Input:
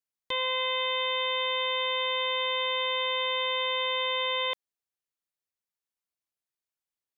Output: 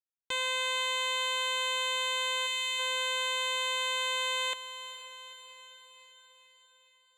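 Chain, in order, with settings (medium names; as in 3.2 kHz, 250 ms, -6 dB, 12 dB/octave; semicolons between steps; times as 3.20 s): power-law waveshaper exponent 2; time-frequency box 2.47–2.79 s, 230–1700 Hz -8 dB; echo that smears into a reverb 459 ms, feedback 59%, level -12 dB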